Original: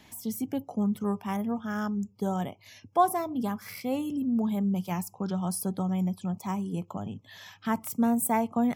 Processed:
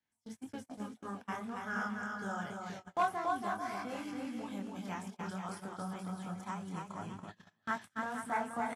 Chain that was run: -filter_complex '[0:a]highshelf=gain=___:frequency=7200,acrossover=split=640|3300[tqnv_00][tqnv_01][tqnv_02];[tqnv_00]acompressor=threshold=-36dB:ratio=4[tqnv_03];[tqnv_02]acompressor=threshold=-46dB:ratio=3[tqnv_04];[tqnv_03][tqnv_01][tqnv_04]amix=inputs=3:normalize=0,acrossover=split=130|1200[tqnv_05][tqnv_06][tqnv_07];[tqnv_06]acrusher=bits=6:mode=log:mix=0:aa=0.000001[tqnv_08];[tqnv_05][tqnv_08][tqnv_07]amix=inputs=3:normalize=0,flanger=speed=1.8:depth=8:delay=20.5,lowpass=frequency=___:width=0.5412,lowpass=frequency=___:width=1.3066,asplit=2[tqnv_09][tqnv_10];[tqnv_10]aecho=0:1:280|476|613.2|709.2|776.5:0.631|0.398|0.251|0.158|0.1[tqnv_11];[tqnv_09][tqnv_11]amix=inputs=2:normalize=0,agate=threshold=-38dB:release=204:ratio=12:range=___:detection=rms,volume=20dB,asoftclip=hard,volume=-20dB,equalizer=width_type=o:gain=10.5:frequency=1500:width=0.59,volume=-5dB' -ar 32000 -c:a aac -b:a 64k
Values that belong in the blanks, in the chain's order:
5.5, 9400, 9400, -29dB